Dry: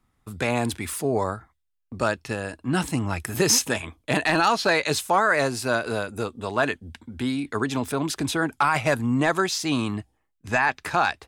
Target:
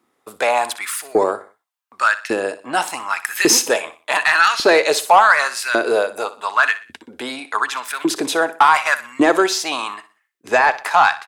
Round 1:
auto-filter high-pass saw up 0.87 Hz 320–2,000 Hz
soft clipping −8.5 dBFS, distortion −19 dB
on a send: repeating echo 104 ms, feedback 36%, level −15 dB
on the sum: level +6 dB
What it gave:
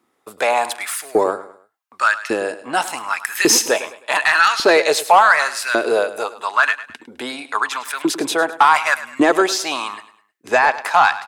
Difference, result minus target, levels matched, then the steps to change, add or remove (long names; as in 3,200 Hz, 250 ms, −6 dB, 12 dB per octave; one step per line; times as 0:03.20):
echo 43 ms late
change: repeating echo 61 ms, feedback 36%, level −15 dB